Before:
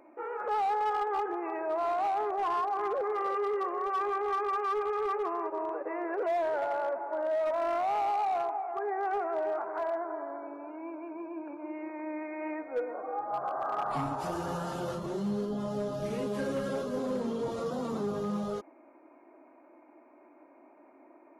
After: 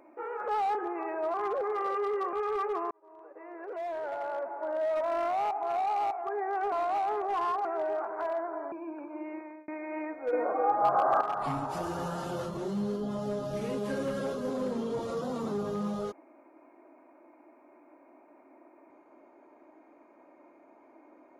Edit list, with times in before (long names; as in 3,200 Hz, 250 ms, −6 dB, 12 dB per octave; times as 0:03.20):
0:00.75–0:01.22: remove
0:01.81–0:02.74: move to 0:09.22
0:03.73–0:04.83: remove
0:05.41–0:07.40: fade in
0:08.01–0:08.61: reverse
0:10.29–0:11.21: remove
0:11.82–0:12.17: fade out
0:12.82–0:13.70: clip gain +8.5 dB